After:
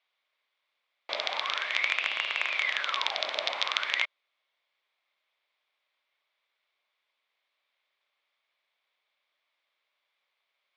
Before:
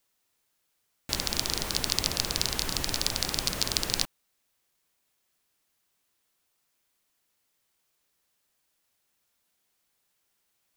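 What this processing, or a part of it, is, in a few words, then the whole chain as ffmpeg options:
voice changer toy: -filter_complex "[0:a]asettb=1/sr,asplit=3[a][b][c];[a]atrim=end=1.944[d];[b]atrim=start=1.94:end=2.53,asetpts=PTS-STARTPTS,afade=t=in:d=0.004:c=qsin,afade=t=out:st=0.586:d=0.004:c=qsin,lowpass=5.4k[e];[c]atrim=start=2.526[f];[d][e]acrossfade=d=0.004:c1=hsin:c2=qsin[g];[g][f]acrossfade=d=0.004:c1=qsin:c2=hsin,aeval=exprs='val(0)*sin(2*PI*1700*n/s+1700*0.65/0.45*sin(2*PI*0.45*n/s))':c=same,highpass=560,equalizer=f=590:t=q:w=4:g=7,equalizer=f=1.1k:t=q:w=4:g=6,equalizer=f=2.2k:t=q:w=4:g=10,equalizer=f=3.5k:t=q:w=4:g=7,lowpass=f=4.1k:w=0.5412,lowpass=f=4.1k:w=1.3066"

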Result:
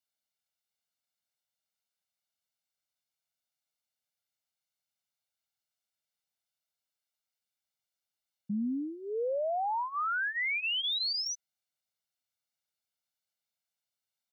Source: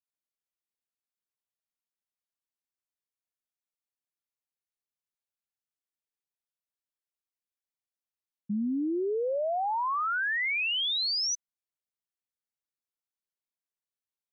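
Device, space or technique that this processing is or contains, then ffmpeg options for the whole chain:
broadcast voice chain: -af "highpass=93,aecho=1:1:1.4:0.87,deesser=0.9,acompressor=threshold=-28dB:ratio=6,equalizer=f=4.2k:t=o:w=1.1:g=5.5,alimiter=level_in=4dB:limit=-24dB:level=0:latency=1,volume=-4dB"

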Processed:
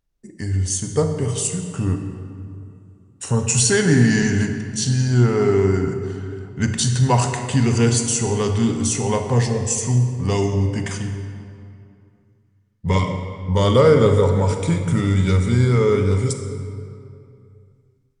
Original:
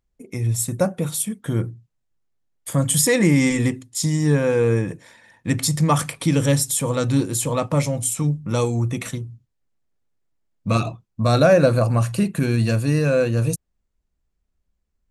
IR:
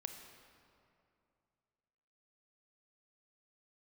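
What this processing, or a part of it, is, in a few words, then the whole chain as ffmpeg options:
slowed and reverbed: -filter_complex "[0:a]asetrate=36603,aresample=44100[a];[1:a]atrim=start_sample=2205[b];[a][b]afir=irnorm=-1:irlink=0,volume=4dB"

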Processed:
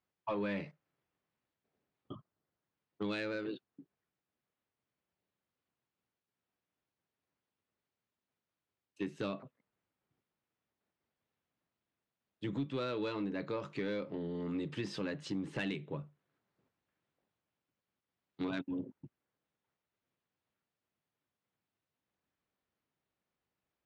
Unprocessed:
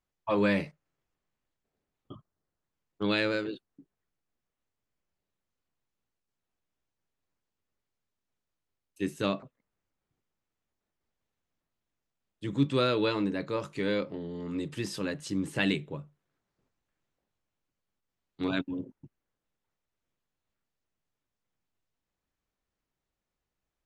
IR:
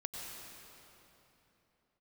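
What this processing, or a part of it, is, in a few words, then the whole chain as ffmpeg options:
AM radio: -af "highpass=100,lowpass=4k,acompressor=threshold=-33dB:ratio=5,asoftclip=type=tanh:threshold=-26dB"

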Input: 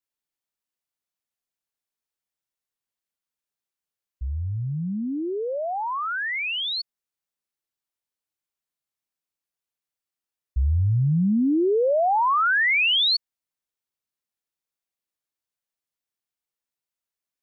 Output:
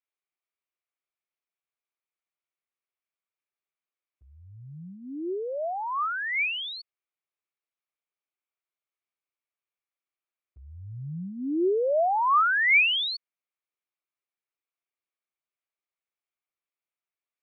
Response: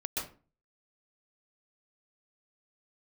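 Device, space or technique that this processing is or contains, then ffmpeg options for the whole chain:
kitchen radio: -af "highpass=220,equalizer=f=220:t=q:w=4:g=-10,equalizer=f=370:t=q:w=4:g=5,equalizer=f=650:t=q:w=4:g=4,equalizer=f=1.2k:t=q:w=4:g=7,equalizer=f=2.3k:t=q:w=4:g=9,lowpass=f=3.7k:w=0.5412,lowpass=f=3.7k:w=1.3066,volume=-6dB"

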